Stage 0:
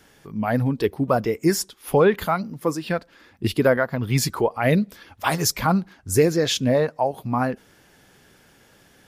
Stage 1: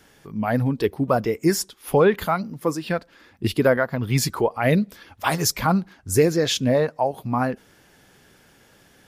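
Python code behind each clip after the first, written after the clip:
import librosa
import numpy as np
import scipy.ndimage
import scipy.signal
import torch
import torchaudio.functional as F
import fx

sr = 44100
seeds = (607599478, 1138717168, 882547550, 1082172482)

y = x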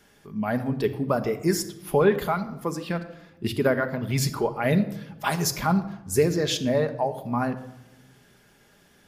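y = fx.room_shoebox(x, sr, seeds[0], volume_m3=3400.0, walls='furnished', distance_m=1.3)
y = y * 10.0 ** (-4.5 / 20.0)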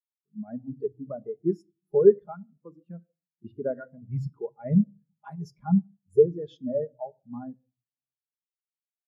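y = fx.spectral_expand(x, sr, expansion=2.5)
y = y * 10.0 ** (2.0 / 20.0)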